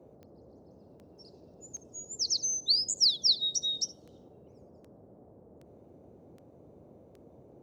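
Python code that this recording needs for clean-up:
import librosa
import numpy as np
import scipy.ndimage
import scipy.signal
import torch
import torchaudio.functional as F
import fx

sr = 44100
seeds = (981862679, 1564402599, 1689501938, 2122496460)

y = fx.fix_declick_ar(x, sr, threshold=10.0)
y = fx.noise_reduce(y, sr, print_start_s=5.4, print_end_s=5.9, reduce_db=22.0)
y = fx.fix_echo_inverse(y, sr, delay_ms=72, level_db=-19.5)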